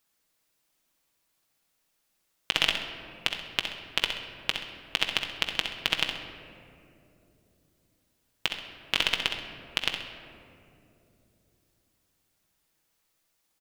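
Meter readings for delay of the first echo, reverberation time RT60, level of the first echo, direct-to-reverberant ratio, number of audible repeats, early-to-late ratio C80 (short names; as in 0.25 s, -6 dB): 65 ms, 3.0 s, -8.0 dB, 1.5 dB, 2, 7.0 dB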